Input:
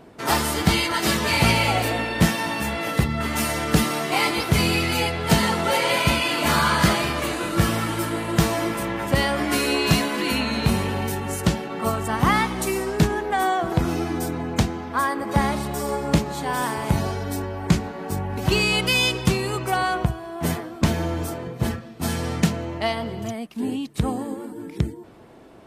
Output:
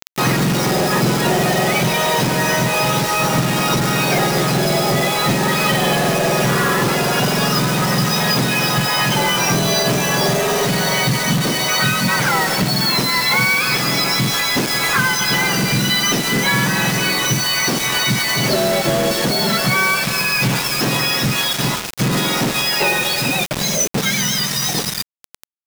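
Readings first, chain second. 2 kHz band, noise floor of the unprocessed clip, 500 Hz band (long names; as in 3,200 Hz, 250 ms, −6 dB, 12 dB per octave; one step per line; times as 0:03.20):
+8.0 dB, −39 dBFS, +6.0 dB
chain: frequency axis turned over on the octave scale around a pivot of 1,300 Hz
downward compressor 12 to 1, threshold −30 dBFS, peak gain reduction 17.5 dB
soft clipping −31 dBFS, distortion −13 dB
Chebyshev low-pass filter 6,100 Hz, order 6
single-tap delay 551 ms −17 dB
bit reduction 7 bits
boost into a limiter +31 dB
level −8.5 dB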